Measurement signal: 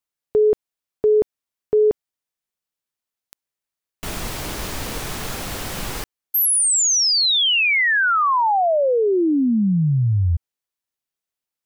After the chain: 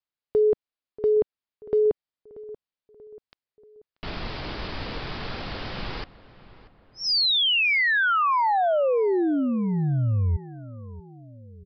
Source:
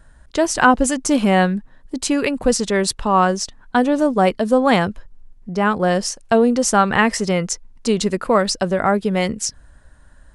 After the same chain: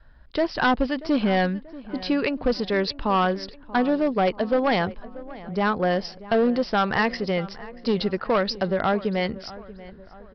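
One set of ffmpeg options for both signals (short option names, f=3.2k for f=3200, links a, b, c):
-filter_complex "[0:a]adynamicequalizer=threshold=0.0398:dfrequency=210:dqfactor=1.4:tfrequency=210:tqfactor=1.4:attack=5:release=100:ratio=0.375:range=2:mode=cutabove:tftype=bell,aresample=11025,asoftclip=type=hard:threshold=-11.5dB,aresample=44100,asplit=2[a][b];[b]adelay=635,lowpass=f=2.2k:p=1,volume=-17.5dB,asplit=2[c][d];[d]adelay=635,lowpass=f=2.2k:p=1,volume=0.5,asplit=2[e][f];[f]adelay=635,lowpass=f=2.2k:p=1,volume=0.5,asplit=2[g][h];[h]adelay=635,lowpass=f=2.2k:p=1,volume=0.5[i];[a][c][e][g][i]amix=inputs=5:normalize=0,volume=-4dB"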